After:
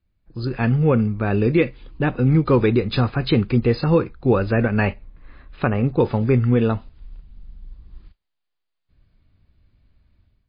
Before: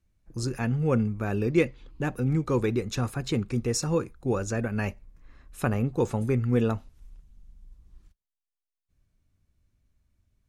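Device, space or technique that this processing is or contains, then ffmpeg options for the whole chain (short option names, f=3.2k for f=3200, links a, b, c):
low-bitrate web radio: -filter_complex "[0:a]asettb=1/sr,asplit=3[a][b][c];[a]atrim=end=4.674[d];[b]atrim=start=4.67:end=5.85,asetpts=PTS-STARTPTS,afade=t=in:d=0.004:c=qsin,afade=t=out:st=1.176:d=0.004:c=qsin,bass=f=250:g=-2,treble=f=4k:g=-6[e];[c]atrim=start=5.846[f];[d][e]acrossfade=d=0.004:c1=hsin:c2=qsin[g];[g][f]acrossfade=d=0.004:c1=qsin:c2=hsin,dynaudnorm=f=320:g=3:m=11.5dB,alimiter=limit=-6dB:level=0:latency=1:release=406" -ar 11025 -c:a libmp3lame -b:a 24k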